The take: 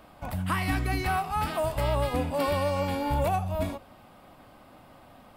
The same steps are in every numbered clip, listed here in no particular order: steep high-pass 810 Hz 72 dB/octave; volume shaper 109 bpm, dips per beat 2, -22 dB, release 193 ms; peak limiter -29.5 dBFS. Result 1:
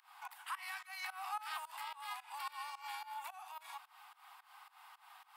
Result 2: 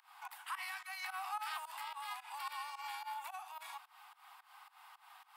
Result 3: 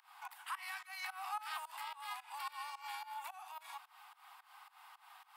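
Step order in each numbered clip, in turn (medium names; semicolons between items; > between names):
peak limiter > steep high-pass > volume shaper; volume shaper > peak limiter > steep high-pass; peak limiter > volume shaper > steep high-pass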